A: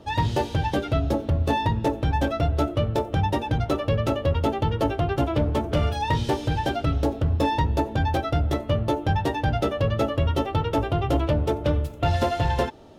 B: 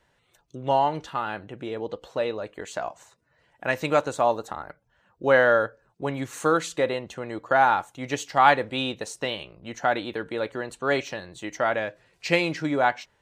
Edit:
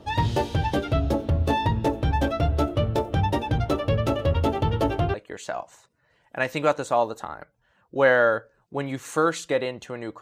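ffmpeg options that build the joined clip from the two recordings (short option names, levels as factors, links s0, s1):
-filter_complex "[0:a]asplit=3[s0][s1][s2];[s0]afade=t=out:st=4.18:d=0.02[s3];[s1]aecho=1:1:109:0.178,afade=t=in:st=4.18:d=0.02,afade=t=out:st=5.14:d=0.02[s4];[s2]afade=t=in:st=5.14:d=0.02[s5];[s3][s4][s5]amix=inputs=3:normalize=0,apad=whole_dur=10.21,atrim=end=10.21,atrim=end=5.142[s6];[1:a]atrim=start=2.418:end=7.49[s7];[s6][s7]acrossfade=d=0.004:c1=hsin:c2=hsin"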